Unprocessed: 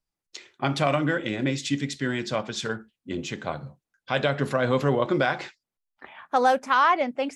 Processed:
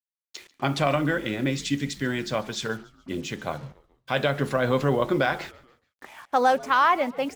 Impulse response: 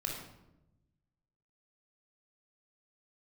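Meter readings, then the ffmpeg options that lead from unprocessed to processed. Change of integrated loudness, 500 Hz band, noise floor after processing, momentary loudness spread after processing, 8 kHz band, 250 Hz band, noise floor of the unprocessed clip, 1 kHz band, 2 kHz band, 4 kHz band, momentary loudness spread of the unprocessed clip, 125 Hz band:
0.0 dB, 0.0 dB, below −85 dBFS, 14 LU, 0.0 dB, 0.0 dB, below −85 dBFS, 0.0 dB, 0.0 dB, 0.0 dB, 14 LU, 0.0 dB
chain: -filter_complex "[0:a]acrusher=bits=7:mix=0:aa=0.5,asplit=4[link_01][link_02][link_03][link_04];[link_02]adelay=142,afreqshift=-91,volume=-22dB[link_05];[link_03]adelay=284,afreqshift=-182,volume=-28.7dB[link_06];[link_04]adelay=426,afreqshift=-273,volume=-35.5dB[link_07];[link_01][link_05][link_06][link_07]amix=inputs=4:normalize=0"

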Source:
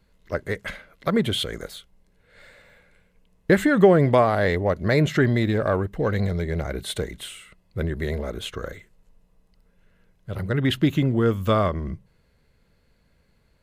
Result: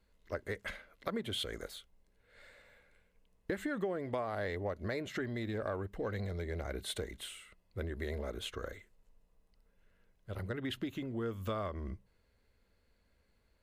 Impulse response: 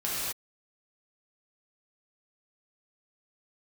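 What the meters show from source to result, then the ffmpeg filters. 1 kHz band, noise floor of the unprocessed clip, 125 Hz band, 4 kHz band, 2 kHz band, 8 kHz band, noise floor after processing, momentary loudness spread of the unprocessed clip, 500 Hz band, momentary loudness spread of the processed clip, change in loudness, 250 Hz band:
−16.5 dB, −64 dBFS, −18.0 dB, −11.5 dB, −14.5 dB, −10.5 dB, −73 dBFS, 18 LU, −16.5 dB, 11 LU, −17.0 dB, −17.5 dB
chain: -af "acompressor=threshold=-24dB:ratio=6,equalizer=frequency=150:width_type=o:width=0.42:gain=-14,volume=-8.5dB"

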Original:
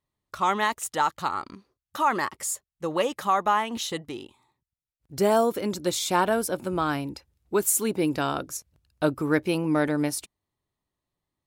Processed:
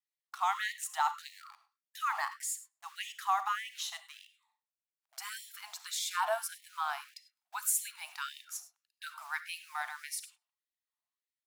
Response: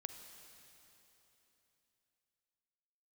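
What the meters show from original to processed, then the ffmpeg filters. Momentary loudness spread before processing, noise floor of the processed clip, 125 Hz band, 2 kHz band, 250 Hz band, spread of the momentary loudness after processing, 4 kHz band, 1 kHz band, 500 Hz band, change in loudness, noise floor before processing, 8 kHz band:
13 LU, below −85 dBFS, below −40 dB, −6.5 dB, below −40 dB, 18 LU, −6.5 dB, −9.0 dB, −20.0 dB, −10.0 dB, below −85 dBFS, −6.5 dB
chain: -filter_complex "[0:a]adynamicequalizer=threshold=0.0178:dfrequency=310:dqfactor=1.4:tfrequency=310:tqfactor=1.4:attack=5:release=100:ratio=0.375:range=2.5:mode=boostabove:tftype=bell,asplit=2[link_01][link_02];[link_02]acrusher=bits=5:mix=0:aa=0.000001,volume=-11dB[link_03];[link_01][link_03]amix=inputs=2:normalize=0,asplit=2[link_04][link_05];[link_05]adelay=128,lowpass=frequency=1800:poles=1,volume=-24dB,asplit=2[link_06][link_07];[link_07]adelay=128,lowpass=frequency=1800:poles=1,volume=0.26[link_08];[link_04][link_06][link_08]amix=inputs=3:normalize=0[link_09];[1:a]atrim=start_sample=2205,afade=type=out:start_time=0.17:duration=0.01,atrim=end_sample=7938,asetrate=48510,aresample=44100[link_10];[link_09][link_10]afir=irnorm=-1:irlink=0,afftfilt=real='re*gte(b*sr/1024,620*pow(1800/620,0.5+0.5*sin(2*PI*1.7*pts/sr)))':imag='im*gte(b*sr/1024,620*pow(1800/620,0.5+0.5*sin(2*PI*1.7*pts/sr)))':win_size=1024:overlap=0.75,volume=-4dB"

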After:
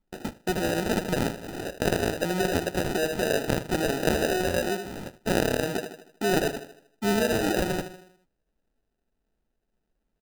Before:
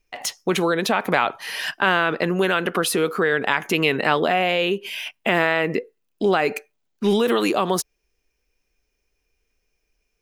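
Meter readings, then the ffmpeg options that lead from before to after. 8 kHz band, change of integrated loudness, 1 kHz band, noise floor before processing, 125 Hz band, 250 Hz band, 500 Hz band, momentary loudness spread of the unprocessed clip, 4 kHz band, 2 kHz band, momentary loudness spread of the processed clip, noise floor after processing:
−3.0 dB, −6.0 dB, −9.0 dB, −74 dBFS, −1.0 dB, −3.5 dB, −5.0 dB, 8 LU, −7.0 dB, −9.5 dB, 9 LU, −79 dBFS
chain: -filter_complex "[0:a]asplit=2[link_01][link_02];[link_02]adelay=78,lowpass=frequency=1100:poles=1,volume=-7.5dB,asplit=2[link_03][link_04];[link_04]adelay=78,lowpass=frequency=1100:poles=1,volume=0.5,asplit=2[link_05][link_06];[link_06]adelay=78,lowpass=frequency=1100:poles=1,volume=0.5,asplit=2[link_07][link_08];[link_08]adelay=78,lowpass=frequency=1100:poles=1,volume=0.5,asplit=2[link_09][link_10];[link_10]adelay=78,lowpass=frequency=1100:poles=1,volume=0.5,asplit=2[link_11][link_12];[link_12]adelay=78,lowpass=frequency=1100:poles=1,volume=0.5[link_13];[link_01][link_03][link_05][link_07][link_09][link_11][link_13]amix=inputs=7:normalize=0,acrusher=samples=40:mix=1:aa=0.000001,volume=-6dB"

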